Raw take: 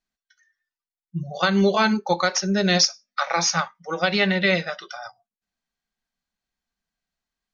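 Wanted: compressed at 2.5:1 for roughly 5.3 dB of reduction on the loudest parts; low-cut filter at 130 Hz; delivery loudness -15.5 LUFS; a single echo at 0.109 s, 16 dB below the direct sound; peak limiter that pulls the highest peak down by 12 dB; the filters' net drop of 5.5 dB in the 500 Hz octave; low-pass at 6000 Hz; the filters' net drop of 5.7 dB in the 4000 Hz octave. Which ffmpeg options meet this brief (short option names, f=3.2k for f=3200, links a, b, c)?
-af "highpass=130,lowpass=6k,equalizer=f=500:t=o:g=-7,equalizer=f=4k:t=o:g=-6,acompressor=threshold=-26dB:ratio=2.5,alimiter=level_in=1dB:limit=-24dB:level=0:latency=1,volume=-1dB,aecho=1:1:109:0.158,volume=19.5dB"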